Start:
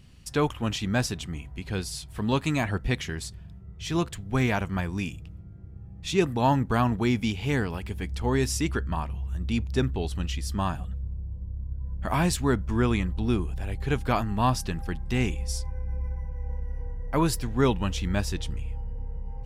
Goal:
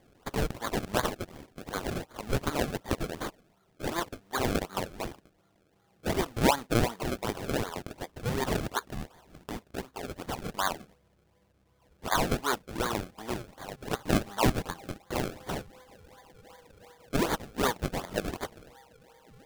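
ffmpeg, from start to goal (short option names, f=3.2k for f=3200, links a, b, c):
-filter_complex "[0:a]highpass=780,asettb=1/sr,asplit=3[a][b][c];[a]atrim=end=8.914[d];[b]atrim=start=8.91:end=10.03,asetpts=PTS-STARTPTS,afade=t=in:d=0.004:c=qsin,afade=t=out:st=1.116:d=0.004:c=qsin,acompressor=threshold=-38dB:ratio=3[e];[c]atrim=start=10.026[f];[d][e]acrossfade=d=0.004:c1=hsin:c2=qsin[g];[g][f]acrossfade=d=0.004:c1=qsin:c2=hsin,acrusher=samples=32:mix=1:aa=0.000001:lfo=1:lforange=32:lforate=2.7,volume=3.5dB"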